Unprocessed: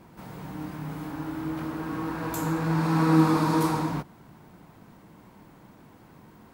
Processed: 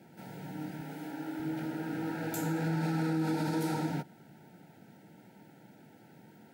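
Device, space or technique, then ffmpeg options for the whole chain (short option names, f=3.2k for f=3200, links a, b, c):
PA system with an anti-feedback notch: -filter_complex "[0:a]highpass=f=120:w=0.5412,highpass=f=120:w=1.3066,asuperstop=centerf=1100:order=20:qfactor=3.1,alimiter=limit=-20dB:level=0:latency=1:release=70,asettb=1/sr,asplit=3[a][b][c];[a]atrim=end=0.814[d];[b]atrim=start=0.81:end=1.4,asetpts=PTS-STARTPTS,afade=t=in:d=0.004:c=qsin,afade=t=out:st=0.586:d=0.004:c=qsin,highpass=220[e];[c]atrim=start=1.396[f];[d][e]acrossfade=d=0.004:c1=hsin:c2=qsin[g];[g][f]acrossfade=d=0.004:c1=qsin:c2=hsin,volume=-3.5dB"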